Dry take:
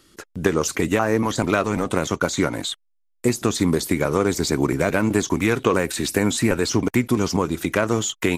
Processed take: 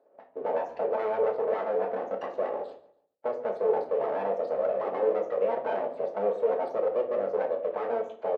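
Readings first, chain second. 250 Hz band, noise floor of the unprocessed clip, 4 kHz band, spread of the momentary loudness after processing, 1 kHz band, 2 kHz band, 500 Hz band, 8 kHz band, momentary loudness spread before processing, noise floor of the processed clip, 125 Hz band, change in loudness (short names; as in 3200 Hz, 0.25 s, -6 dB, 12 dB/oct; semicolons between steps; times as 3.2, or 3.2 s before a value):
-23.5 dB, -67 dBFS, under -25 dB, 6 LU, -5.0 dB, -18.5 dB, -3.0 dB, under -40 dB, 4 LU, -63 dBFS, under -30 dB, -7.5 dB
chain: median filter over 25 samples; high shelf 4800 Hz +10.5 dB; in parallel at +2 dB: limiter -15.5 dBFS, peak gain reduction 10.5 dB; on the sum: flange 0.42 Hz, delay 3.5 ms, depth 1.4 ms, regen -37%; wavefolder -12.5 dBFS; loudest bins only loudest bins 32; full-wave rectifier; resonant high-pass 500 Hz, resonance Q 3.8; tape spacing loss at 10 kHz 32 dB; on a send: feedback echo 0.142 s, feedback 33%, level -20.5 dB; on the sum: shoebox room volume 360 m³, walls furnished, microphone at 1.5 m; gain -8 dB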